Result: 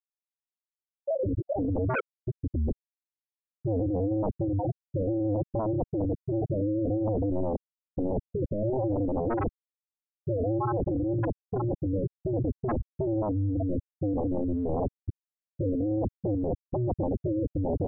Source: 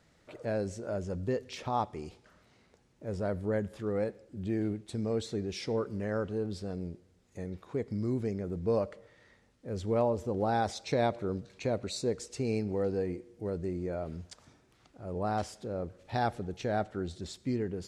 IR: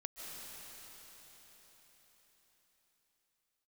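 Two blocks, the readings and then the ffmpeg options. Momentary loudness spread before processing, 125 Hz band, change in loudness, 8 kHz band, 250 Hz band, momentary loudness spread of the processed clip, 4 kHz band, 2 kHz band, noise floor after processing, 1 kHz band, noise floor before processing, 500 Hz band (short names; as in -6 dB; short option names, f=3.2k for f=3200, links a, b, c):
11 LU, +7.0 dB, +4.0 dB, under -30 dB, +6.5 dB, 6 LU, under -25 dB, -1.0 dB, under -85 dBFS, -1.0 dB, -66 dBFS, +2.5 dB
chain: -filter_complex "[0:a]areverse,acompressor=threshold=-40dB:ratio=8,areverse,asubboost=boost=8:cutoff=110,aeval=exprs='0.0562*(cos(1*acos(clip(val(0)/0.0562,-1,1)))-cos(1*PI/2))+0.00316*(cos(6*acos(clip(val(0)/0.0562,-1,1)))-cos(6*PI/2))':c=same,alimiter=level_in=9.5dB:limit=-24dB:level=0:latency=1:release=30,volume=-9.5dB,highshelf=f=2.6k:g=-5.5,acrossover=split=1800[a][b];[a]adelay=610[c];[c][b]amix=inputs=2:normalize=0,afftfilt=real='re*gte(hypot(re,im),0.0562)':imag='im*gte(hypot(re,im),0.0562)':win_size=1024:overlap=0.75,aeval=exprs='0.0224*sin(PI/2*6.31*val(0)/0.0224)':c=same,afftfilt=real='re*lt(b*sr/1024,590*pow(4400/590,0.5+0.5*sin(2*PI*0.56*pts/sr)))':imag='im*lt(b*sr/1024,590*pow(4400/590,0.5+0.5*sin(2*PI*0.56*pts/sr)))':win_size=1024:overlap=0.75,volume=9dB"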